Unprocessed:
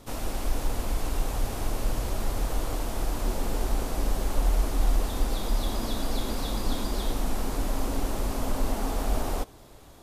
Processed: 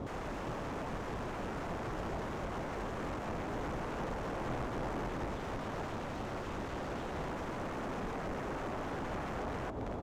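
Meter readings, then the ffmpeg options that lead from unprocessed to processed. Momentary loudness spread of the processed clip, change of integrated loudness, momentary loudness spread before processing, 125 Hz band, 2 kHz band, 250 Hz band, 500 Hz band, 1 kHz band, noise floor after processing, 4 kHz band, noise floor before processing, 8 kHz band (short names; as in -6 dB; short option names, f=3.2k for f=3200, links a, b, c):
2 LU, -8.0 dB, 4 LU, -9.5 dB, -2.0 dB, -5.5 dB, -4.0 dB, -3.5 dB, -41 dBFS, -13.0 dB, -49 dBFS, -18.0 dB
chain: -filter_complex "[0:a]highpass=64,asplit=2[a][b];[b]aecho=0:1:265|530|795:0.596|0.0953|0.0152[c];[a][c]amix=inputs=2:normalize=0,acompressor=threshold=-40dB:ratio=16,aeval=exprs='(mod(112*val(0)+1,2)-1)/112':c=same,adynamicsmooth=sensitivity=2.5:basefreq=1.2k,aexciter=amount=1.6:drive=7.5:freq=5.9k,volume=13dB"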